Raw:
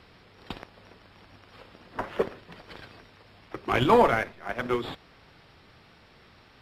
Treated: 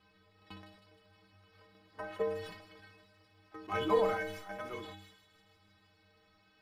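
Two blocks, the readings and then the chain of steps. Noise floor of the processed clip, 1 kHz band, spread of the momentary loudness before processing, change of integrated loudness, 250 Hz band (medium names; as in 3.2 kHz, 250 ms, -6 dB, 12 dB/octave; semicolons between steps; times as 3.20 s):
-69 dBFS, -11.5 dB, 23 LU, -9.5 dB, -12.0 dB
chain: dynamic bell 620 Hz, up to +4 dB, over -34 dBFS, Q 0.73; inharmonic resonator 93 Hz, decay 0.61 s, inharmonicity 0.03; on a send: feedback echo behind a high-pass 157 ms, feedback 68%, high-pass 4.6 kHz, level -5 dB; on the sum: decay stretcher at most 64 dB/s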